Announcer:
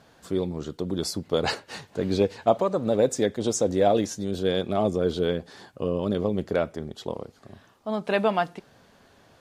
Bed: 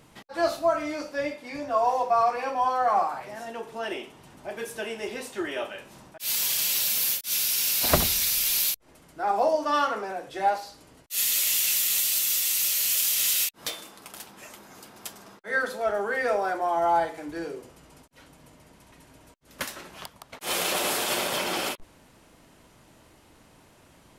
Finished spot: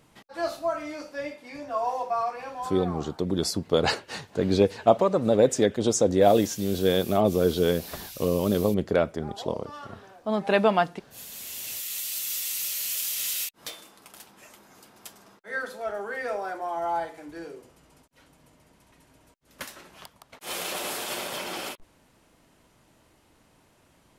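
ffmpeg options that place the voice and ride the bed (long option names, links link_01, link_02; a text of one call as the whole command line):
ffmpeg -i stem1.wav -i stem2.wav -filter_complex "[0:a]adelay=2400,volume=2dB[link_01];[1:a]volume=8dB,afade=type=out:start_time=2.07:duration=0.96:silence=0.211349,afade=type=in:start_time=11.29:duration=1.08:silence=0.237137[link_02];[link_01][link_02]amix=inputs=2:normalize=0" out.wav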